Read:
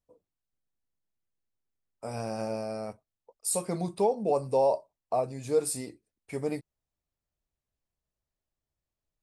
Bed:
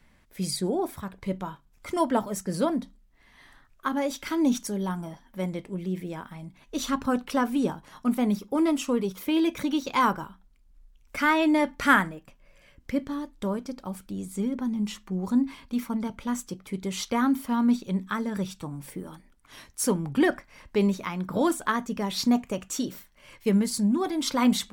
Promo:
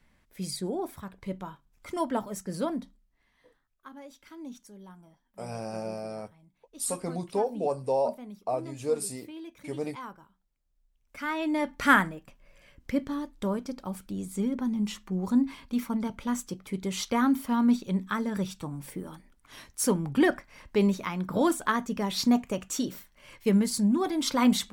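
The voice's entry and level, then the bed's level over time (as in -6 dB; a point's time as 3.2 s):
3.35 s, -2.0 dB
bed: 2.87 s -5 dB
3.63 s -19 dB
10.66 s -19 dB
11.91 s -0.5 dB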